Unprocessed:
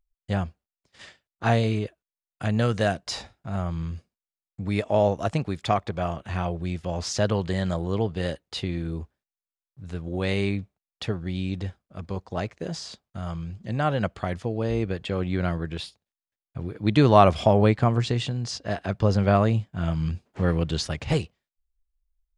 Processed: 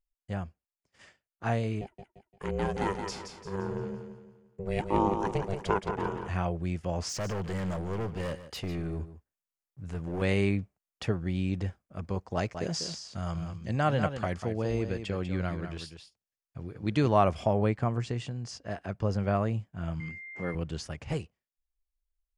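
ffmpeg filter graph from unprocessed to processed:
-filter_complex "[0:a]asettb=1/sr,asplit=3[s0][s1][s2];[s0]atrim=end=1.814[s3];[s1]atrim=start=1.81:end=6.28,asetpts=PTS-STARTPTS,afade=t=in:d=0.004:c=qsin,afade=t=out:st=4.466:d=0.004:c=qsin,aeval=exprs='val(0)*sin(2*PI*290*n/s)':c=same,aecho=1:1:173|346|519|692|865:0.447|0.174|0.0679|0.0265|0.0103,atrim=end_sample=197127[s4];[s2]atrim=start=6.276[s5];[s3][s4]acrossfade=d=0.004:c1=hsin:c2=qsin[s6];[s6][s5]acrossfade=d=0.004:c1=qsin:c2=hsin,asettb=1/sr,asplit=3[s7][s8][s9];[s7]atrim=end=7.094[s10];[s8]atrim=start=7.09:end=10.22,asetpts=PTS-STARTPTS,afade=t=in:d=0.004:c=qsin,afade=t=out:st=3.126:d=0.004:c=qsin,asoftclip=type=hard:threshold=0.0398,aecho=1:1:148:0.211,atrim=end_sample=138033[s11];[s9]atrim=start=10.216[s12];[s10][s11]acrossfade=d=0.004:c1=hsin:c2=qsin[s13];[s13][s12]acrossfade=d=0.004:c1=qsin:c2=hsin,asettb=1/sr,asplit=3[s14][s15][s16];[s14]atrim=end=12.354[s17];[s15]atrim=start=12.35:end=17.08,asetpts=PTS-STARTPTS,afade=t=in:d=0.004:c=qsin,afade=t=out:st=4.726:d=0.004:c=qsin,equalizer=f=5200:w=0.91:g=7,aecho=1:1:195:0.376,atrim=end_sample=208593[s18];[s16]atrim=start=17.076[s19];[s17][s18]acrossfade=d=0.004:c1=hsin:c2=qsin[s20];[s20][s19]acrossfade=d=0.004:c1=qsin:c2=hsin,asettb=1/sr,asplit=3[s21][s22][s23];[s21]atrim=end=20.004[s24];[s22]atrim=start=20:end=20.55,asetpts=PTS-STARTPTS,afade=t=in:d=0.004:c=qsin,afade=t=out:st=0.546:d=0.004:c=qsin,highpass=170,aeval=exprs='val(0)+0.0251*sin(2*PI*2100*n/s)':c=same[s25];[s23]atrim=start=20.546[s26];[s24][s25]acrossfade=d=0.004:c1=hsin:c2=qsin[s27];[s27][s26]acrossfade=d=0.004:c1=qsin:c2=hsin,equalizer=f=3800:w=2.9:g=-9,dynaudnorm=f=170:g=31:m=2.51,volume=0.376"

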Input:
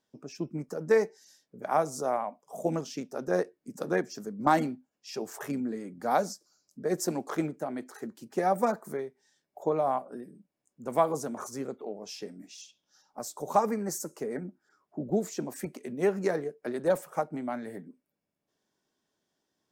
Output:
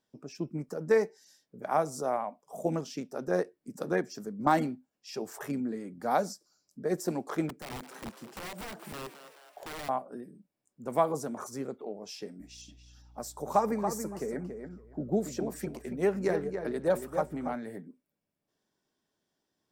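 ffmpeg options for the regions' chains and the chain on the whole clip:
-filter_complex "[0:a]asettb=1/sr,asplit=3[s0][s1][s2];[s0]atrim=end=7.494[s3];[s1]atrim=start=7.49:end=9.89,asetpts=PTS-STARTPTS,afade=t=in:d=0.004:c=qsin,afade=t=out:st=2.396:d=0.004:c=qsin,acompressor=threshold=0.0224:ratio=20:attack=3.2:release=140:knee=1:detection=peak,aeval=exprs='(mod(47.3*val(0)+1,2)-1)/47.3':c=same,asplit=7[s4][s5][s6][s7][s8][s9][s10];[s5]adelay=213,afreqshift=140,volume=0.251[s11];[s6]adelay=426,afreqshift=280,volume=0.143[s12];[s7]adelay=639,afreqshift=420,volume=0.0813[s13];[s8]adelay=852,afreqshift=560,volume=0.0468[s14];[s9]adelay=1065,afreqshift=700,volume=0.0266[s15];[s10]adelay=1278,afreqshift=840,volume=0.0151[s16];[s4][s11][s12][s13][s14][s15][s16]amix=inputs=7:normalize=0,atrim=end_sample=105840[s17];[s2]atrim=start=9.886[s18];[s3][s17]acrossfade=d=0.004:c1=hsin:c2=qsin[s19];[s19][s18]acrossfade=d=0.004:c1=qsin:c2=hsin,asettb=1/sr,asplit=3[s20][s21][s22];[s20]atrim=end=12.404[s23];[s21]atrim=start=12.4:end=17.55,asetpts=PTS-STARTPTS,afade=t=in:d=0.004:c=qsin,afade=t=out:st=5.146:d=0.004:c=qsin,aeval=exprs='val(0)+0.00126*(sin(2*PI*60*n/s)+sin(2*PI*2*60*n/s)/2+sin(2*PI*3*60*n/s)/3+sin(2*PI*4*60*n/s)/4+sin(2*PI*5*60*n/s)/5)':c=same,asplit=2[s24][s25];[s25]adelay=281,lowpass=f=2800:p=1,volume=0.447,asplit=2[s26][s27];[s27]adelay=281,lowpass=f=2800:p=1,volume=0.16,asplit=2[s28][s29];[s29]adelay=281,lowpass=f=2800:p=1,volume=0.16[s30];[s24][s26][s28][s30]amix=inputs=4:normalize=0,atrim=end_sample=227115[s31];[s22]atrim=start=17.546[s32];[s23][s31]acrossfade=d=0.004:c1=hsin:c2=qsin[s33];[s33][s32]acrossfade=d=0.004:c1=qsin:c2=hsin,bandreject=f=6500:w=16,deesser=0.65,lowshelf=f=120:g=4.5,volume=0.841"

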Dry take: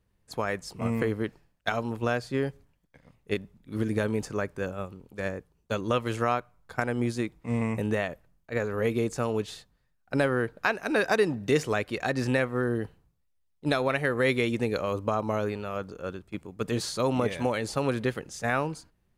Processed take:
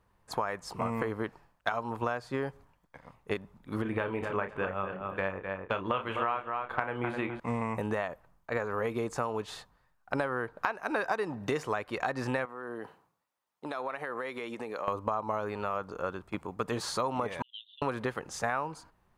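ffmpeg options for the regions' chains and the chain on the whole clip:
-filter_complex "[0:a]asettb=1/sr,asplit=3[s0][s1][s2];[s0]atrim=end=3.824[s3];[s1]atrim=start=3.82:end=7.4,asetpts=PTS-STARTPTS,afade=t=in:d=0.004:c=qsin,afade=t=out:st=3.576:d=0.004:c=qsin,highshelf=f=4000:t=q:w=3:g=-10.5,asplit=2[s4][s5];[s5]adelay=31,volume=0.376[s6];[s4][s6]amix=inputs=2:normalize=0,atrim=end_sample=157878,asplit=2[s7][s8];[s8]adelay=255,lowpass=f=4300:p=1,volume=0.355,asplit=2[s9][s10];[s10]adelay=255,lowpass=f=4300:p=1,volume=0.21,asplit=2[s11][s12];[s12]adelay=255,lowpass=f=4300:p=1,volume=0.21[s13];[s7][s9][s11][s13]amix=inputs=4:normalize=0,atrim=end_sample=157878[s14];[s2]atrim=start=7.396[s15];[s3][s14]acrossfade=d=0.004:c1=hsin:c2=qsin[s16];[s16][s15]acrossfade=d=0.004:c1=qsin:c2=hsin,asettb=1/sr,asplit=3[s17][s18][s19];[s17]atrim=end=12.454[s20];[s18]atrim=start=12.45:end=14.88,asetpts=PTS-STARTPTS,afade=t=in:d=0.004:c=qsin,afade=t=out:st=2.426:d=0.004:c=qsin,highpass=230,acompressor=threshold=0.0126:ratio=8:attack=3.2:release=140:knee=1:detection=peak[s21];[s19]atrim=start=14.876[s22];[s20][s21]acrossfade=d=0.004:c1=hsin:c2=qsin[s23];[s23][s22]acrossfade=d=0.004:c1=qsin:c2=hsin,asettb=1/sr,asplit=3[s24][s25][s26];[s24]atrim=end=17.424[s27];[s25]atrim=start=17.42:end=17.82,asetpts=PTS-STARTPTS,afade=t=in:d=0.004:c=qsin,afade=t=out:st=0.396:d=0.004:c=qsin,asuperpass=centerf=3300:order=12:qfactor=3.6,agate=range=0.0224:threshold=0.00224:ratio=3:release=100:detection=peak[s28];[s26]atrim=start=17.816[s29];[s27][s28]acrossfade=d=0.004:c1=hsin:c2=qsin[s30];[s30][s29]acrossfade=d=0.004:c1=qsin:c2=hsin,equalizer=f=1000:w=0.95:g=14,acompressor=threshold=0.0316:ratio=4"

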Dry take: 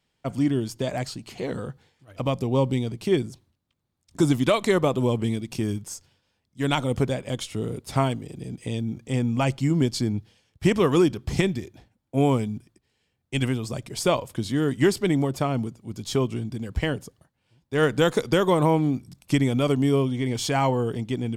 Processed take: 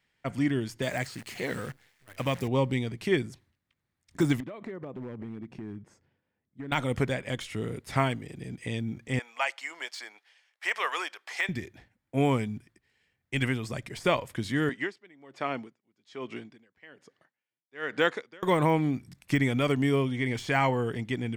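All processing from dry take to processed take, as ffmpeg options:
-filter_complex "[0:a]asettb=1/sr,asplit=3[s0][s1][s2];[s0]atrim=end=0.824[s3];[s1]atrim=start=0.82:end=2.48,asetpts=PTS-STARTPTS,afade=t=in:d=0.004:c=qsin,afade=t=out:st=1.656:d=0.004:c=qsin,highpass=59,highshelf=f=4900:g=11,acrusher=bits=8:dc=4:mix=0:aa=0.000001[s4];[s2]atrim=start=2.476[s5];[s3][s4]acrossfade=d=0.004:c1=hsin:c2=qsin[s6];[s6][s5]acrossfade=d=0.004:c1=qsin:c2=hsin,asettb=1/sr,asplit=3[s7][s8][s9];[s7]atrim=end=4.404[s10];[s8]atrim=start=4.4:end=6.72,asetpts=PTS-STARTPTS,afade=t=in:d=0.004:c=qsin,afade=t=out:st=2.316:d=0.004:c=qsin,acompressor=threshold=0.0398:ratio=16:attack=3.2:release=140:knee=1:detection=peak,bandpass=f=270:t=q:w=0.63,asoftclip=type=hard:threshold=0.0398[s11];[s9]atrim=start=6.716[s12];[s10][s11]acrossfade=d=0.004:c1=hsin:c2=qsin[s13];[s13][s12]acrossfade=d=0.004:c1=qsin:c2=hsin,asettb=1/sr,asplit=3[s14][s15][s16];[s14]atrim=end=9.194[s17];[s15]atrim=start=9.19:end=11.49,asetpts=PTS-STARTPTS,afade=t=in:d=0.004:c=qsin,afade=t=out:st=2.296:d=0.004:c=qsin,highpass=f=670:w=0.5412,highpass=f=670:w=1.3066,highshelf=f=11000:g=-7.5[s18];[s16]atrim=start=11.486[s19];[s17][s18]acrossfade=d=0.004:c1=hsin:c2=qsin[s20];[s20][s19]acrossfade=d=0.004:c1=qsin:c2=hsin,asettb=1/sr,asplit=3[s21][s22][s23];[s21]atrim=end=14.694[s24];[s22]atrim=start=14.69:end=18.43,asetpts=PTS-STARTPTS,afade=t=in:d=0.004:c=qsin,afade=t=out:st=3.736:d=0.004:c=qsin,highpass=290,lowpass=5200,aeval=exprs='val(0)*pow(10,-28*(0.5-0.5*cos(2*PI*1.2*n/s))/20)':c=same[s25];[s23]atrim=start=18.426[s26];[s24][s25]acrossfade=d=0.004:c1=hsin:c2=qsin[s27];[s27][s26]acrossfade=d=0.004:c1=qsin:c2=hsin,deesser=0.75,equalizer=f=1900:w=1.6:g=12,volume=0.596"

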